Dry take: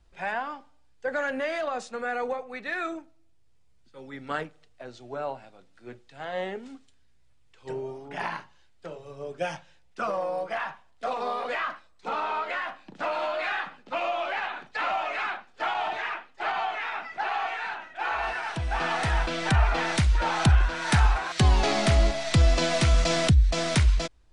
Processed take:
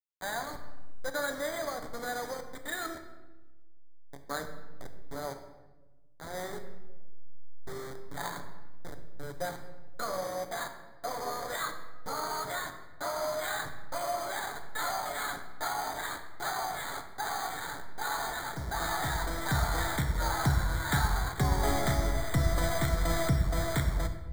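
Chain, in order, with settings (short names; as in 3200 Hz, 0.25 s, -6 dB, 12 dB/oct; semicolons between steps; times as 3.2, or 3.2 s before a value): level-crossing sampler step -29.5 dBFS; high shelf 2300 Hz +11 dB; careless resampling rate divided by 8×, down filtered, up hold; Butterworth band-stop 2700 Hz, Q 1.9; notches 50/100/150/200/250 Hz; on a send: reverb RT60 1.2 s, pre-delay 7 ms, DRR 5.5 dB; on the sum: gain -6.5 dB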